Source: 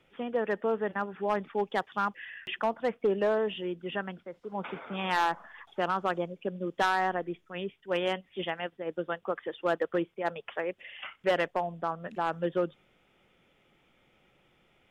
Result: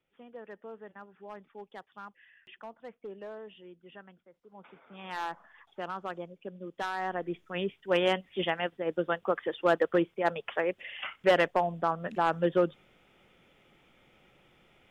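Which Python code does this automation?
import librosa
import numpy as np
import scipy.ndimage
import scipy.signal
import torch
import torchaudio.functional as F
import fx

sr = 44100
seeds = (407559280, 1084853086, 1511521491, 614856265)

y = fx.gain(x, sr, db=fx.line((4.79, -16.0), (5.25, -8.0), (6.92, -8.0), (7.41, 3.5)))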